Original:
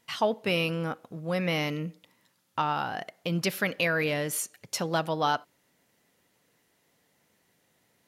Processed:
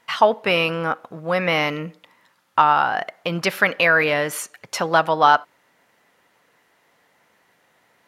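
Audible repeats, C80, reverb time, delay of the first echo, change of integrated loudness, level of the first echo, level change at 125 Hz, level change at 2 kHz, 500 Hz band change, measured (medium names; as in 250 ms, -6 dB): no echo, no reverb, no reverb, no echo, +10.0 dB, no echo, +2.0 dB, +11.5 dB, +8.5 dB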